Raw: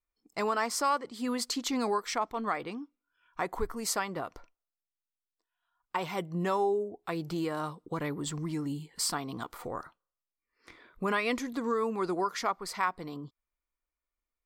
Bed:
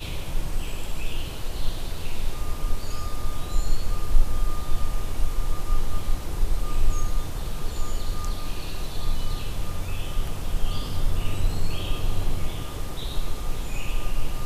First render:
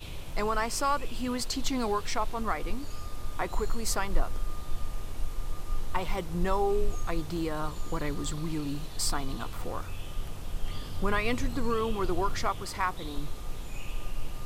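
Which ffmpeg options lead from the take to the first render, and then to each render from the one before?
-filter_complex "[1:a]volume=-8.5dB[a];[0:a][a]amix=inputs=2:normalize=0"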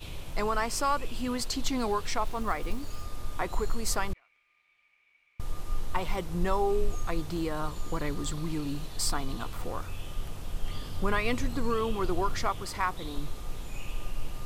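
-filter_complex "[0:a]asettb=1/sr,asplit=3[a][b][c];[a]atrim=end=2.254[d];[b]atrim=start=2.25:end=3.05,asetpts=PTS-STARTPTS,afade=t=in:d=0.004:c=qsin,afade=t=out:st=0.796:d=0.004:c=qsin,acrusher=bits=8:mode=log:mix=0:aa=0.000001[e];[c]atrim=start=3.046[f];[d][e]acrossfade=d=0.004:c1=hsin:c2=qsin[g];[g][f]acrossfade=d=0.004:c1=qsin:c2=hsin,asettb=1/sr,asplit=3[h][i][j];[h]atrim=end=4.134[k];[i]atrim=start=4.13:end=5.4,asetpts=PTS-STARTPTS,afade=t=in:d=0.004:c=qsin,afade=t=out:st=1.266:d=0.004:c=qsin,bandpass=f=2.3k:t=q:w=19[l];[j]atrim=start=5.396[m];[k][l]acrossfade=d=0.004:c1=hsin:c2=qsin[n];[n][m]acrossfade=d=0.004:c1=qsin:c2=hsin"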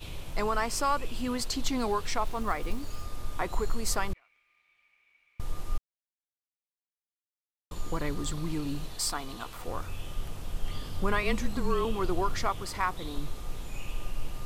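-filter_complex "[0:a]asettb=1/sr,asplit=3[a][b][c];[a]atrim=end=8.954[d];[b]atrim=start=8.95:end=9.68,asetpts=PTS-STARTPTS,afade=t=in:d=0.004:c=qsin,afade=t=out:st=0.726:d=0.004:c=qsin,lowshelf=f=270:g=-10[e];[c]atrim=start=9.676[f];[d][e]acrossfade=d=0.004:c1=hsin:c2=qsin[g];[g][f]acrossfade=d=0.004:c1=qsin:c2=hsin,asettb=1/sr,asplit=3[h][i][j];[h]atrim=end=11.234[k];[i]atrim=start=11.23:end=11.85,asetpts=PTS-STARTPTS,afade=t=in:d=0.004:c=qsin,afade=t=out:st=0.616:d=0.004:c=qsin,afreqshift=-29[l];[j]atrim=start=11.846[m];[k][l]acrossfade=d=0.004:c1=hsin:c2=qsin[n];[n][m]acrossfade=d=0.004:c1=qsin:c2=hsin,asplit=3[o][p][q];[o]atrim=end=5.78,asetpts=PTS-STARTPTS,afade=t=out:st=5.776:d=0.004:c=hsin[r];[p]atrim=start=5.78:end=7.71,asetpts=PTS-STARTPTS,volume=0[s];[q]atrim=start=7.71,asetpts=PTS-STARTPTS,afade=t=in:d=0.004:c=hsin[t];[r][s][t]concat=n=3:v=0:a=1"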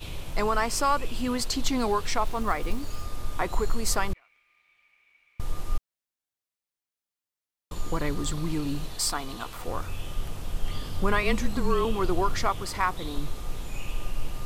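-af "volume=3.5dB"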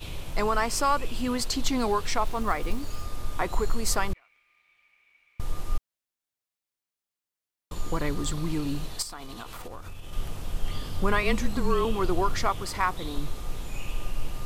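-filter_complex "[0:a]asettb=1/sr,asplit=3[a][b][c];[a]atrim=end=9.024[d];[b]atrim=start=9.02:end=10.13,asetpts=PTS-STARTPTS,afade=t=in:d=0.004:c=qsin,afade=t=out:st=1.106:d=0.004:c=qsin,acompressor=threshold=-34dB:ratio=12:attack=3.2:release=140:knee=1:detection=peak[e];[c]atrim=start=10.126[f];[d][e]acrossfade=d=0.004:c1=hsin:c2=qsin[g];[g][f]acrossfade=d=0.004:c1=qsin:c2=hsin"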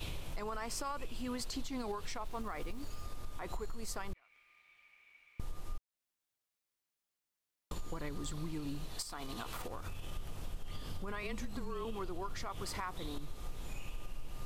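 -af "alimiter=limit=-19.5dB:level=0:latency=1:release=93,acompressor=threshold=-38dB:ratio=4"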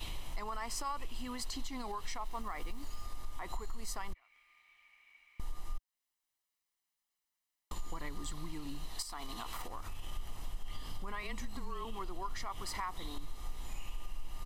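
-af "equalizer=f=120:t=o:w=1.9:g=-10,aecho=1:1:1:0.47"

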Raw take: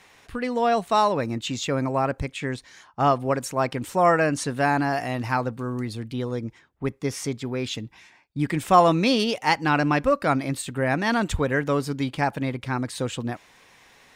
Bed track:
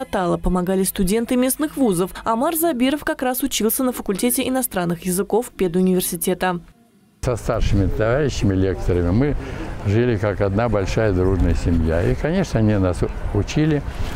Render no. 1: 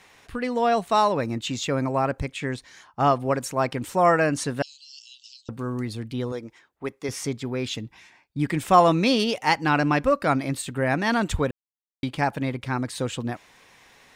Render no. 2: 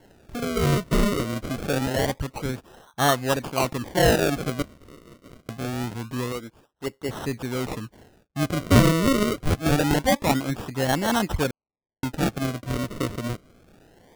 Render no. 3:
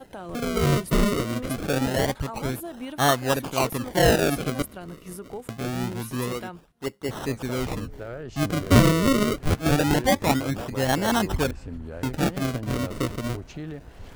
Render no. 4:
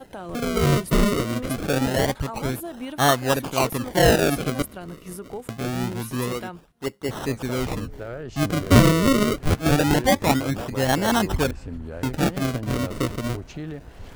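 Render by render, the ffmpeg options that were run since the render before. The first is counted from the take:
-filter_complex "[0:a]asettb=1/sr,asplit=3[a][b][c];[a]atrim=end=4.624[d];[b]atrim=start=4.62:end=5.49,asetpts=PTS-STARTPTS,afade=t=in:d=0.004:c=qsin,afade=t=out:st=0.866:d=0.004:c=qsin,asuperpass=centerf=5000:order=20:qfactor=0.97[e];[c]atrim=start=5.486[f];[d][e]acrossfade=d=0.004:c1=hsin:c2=qsin[g];[g][f]acrossfade=d=0.004:c1=qsin:c2=hsin,asettb=1/sr,asplit=3[h][i][j];[h]atrim=end=6.324[k];[i]atrim=start=6.32:end=7.09,asetpts=PTS-STARTPTS,afade=t=in:d=0.004:c=qsin,afade=t=out:st=0.766:d=0.004:c=qsin,bass=f=250:g=-13,treble=f=4k:g=1[l];[j]atrim=start=7.086[m];[k][l]acrossfade=d=0.004:c1=hsin:c2=qsin[n];[n][m]acrossfade=d=0.004:c1=qsin:c2=hsin,asplit=3[o][p][q];[o]atrim=end=11.51,asetpts=PTS-STARTPTS,afade=t=out:st=11.506:d=0.004:c=hsin[r];[p]atrim=start=11.51:end=12.03,asetpts=PTS-STARTPTS,volume=0[s];[q]atrim=start=12.03,asetpts=PTS-STARTPTS,afade=t=in:d=0.004:c=hsin[t];[r][s][t]concat=n=3:v=0:a=1"
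-af "acrusher=samples=36:mix=1:aa=0.000001:lfo=1:lforange=36:lforate=0.25"
-filter_complex "[1:a]volume=-18dB[a];[0:a][a]amix=inputs=2:normalize=0"
-af "volume=2dB"

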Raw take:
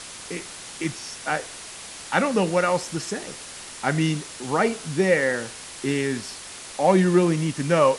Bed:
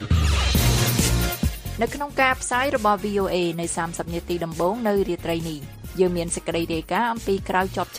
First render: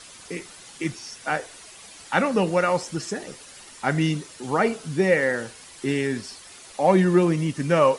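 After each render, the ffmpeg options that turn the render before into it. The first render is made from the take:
-af "afftdn=nr=9:nf=-39"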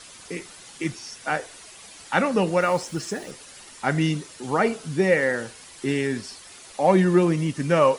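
-filter_complex "[0:a]asettb=1/sr,asplit=3[a][b][c];[a]atrim=end=2.614[d];[b]atrim=start=2.61:end=3.31,asetpts=PTS-STARTPTS,afade=t=in:d=0.004:c=qsin,afade=t=out:st=0.696:d=0.004:c=qsin,acrusher=bits=7:mix=0:aa=0.5[e];[c]atrim=start=3.306[f];[d][e]acrossfade=d=0.004:c1=hsin:c2=qsin[g];[g][f]acrossfade=d=0.004:c1=qsin:c2=hsin"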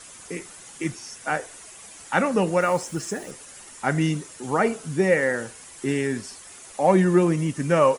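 -af "firequalizer=gain_entry='entry(1600,0);entry(4300,-6);entry(6800,3)':delay=0.05:min_phase=1"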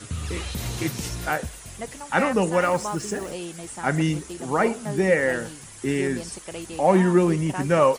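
-filter_complex "[1:a]volume=-11.5dB[a];[0:a][a]amix=inputs=2:normalize=0"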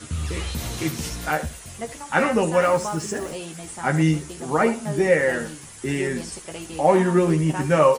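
-filter_complex "[0:a]asplit=2[a][b];[b]adelay=13,volume=-5.5dB[c];[a][c]amix=inputs=2:normalize=0,aecho=1:1:75:0.188"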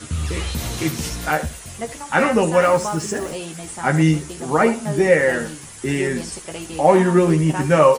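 -af "volume=3.5dB,alimiter=limit=-1dB:level=0:latency=1"

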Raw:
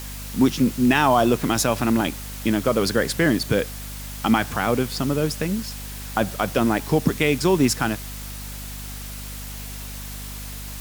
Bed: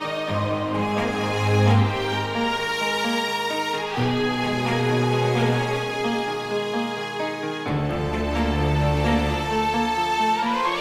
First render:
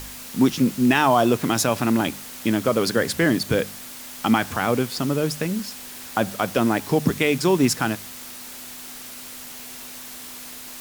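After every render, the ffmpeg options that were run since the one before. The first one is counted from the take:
-af "bandreject=f=50:t=h:w=4,bandreject=f=100:t=h:w=4,bandreject=f=150:t=h:w=4,bandreject=f=200:t=h:w=4"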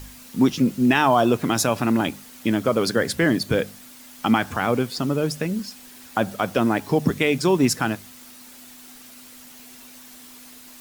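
-af "afftdn=nr=8:nf=-38"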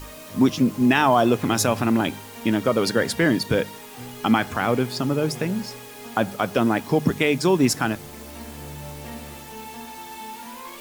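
-filter_complex "[1:a]volume=-16.5dB[a];[0:a][a]amix=inputs=2:normalize=0"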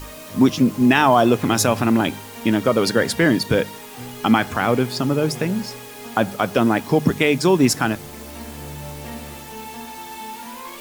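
-af "volume=3dB"

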